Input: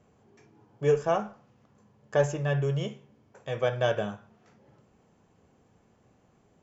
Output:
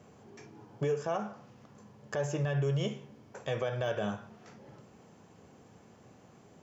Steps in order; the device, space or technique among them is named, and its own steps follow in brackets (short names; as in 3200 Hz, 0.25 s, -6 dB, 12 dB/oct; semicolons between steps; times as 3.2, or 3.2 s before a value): broadcast voice chain (HPF 90 Hz 12 dB/oct; de-esser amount 100%; compressor 3:1, threshold -35 dBFS, peak gain reduction 13 dB; bell 5300 Hz +3 dB 0.77 oct; limiter -30 dBFS, peak gain reduction 10 dB); gain +7 dB